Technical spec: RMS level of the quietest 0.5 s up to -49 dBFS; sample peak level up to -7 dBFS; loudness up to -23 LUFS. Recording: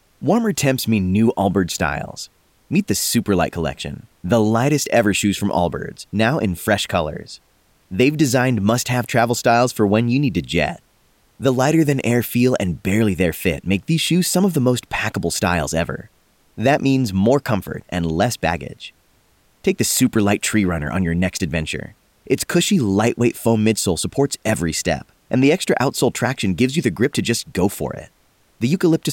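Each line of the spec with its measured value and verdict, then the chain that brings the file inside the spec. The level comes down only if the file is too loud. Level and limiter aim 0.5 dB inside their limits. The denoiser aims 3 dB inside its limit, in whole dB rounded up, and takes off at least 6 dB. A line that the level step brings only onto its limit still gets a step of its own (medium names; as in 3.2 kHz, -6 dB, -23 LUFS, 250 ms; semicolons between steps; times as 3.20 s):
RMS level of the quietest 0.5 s -58 dBFS: pass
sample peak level -4.5 dBFS: fail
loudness -19.0 LUFS: fail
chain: trim -4.5 dB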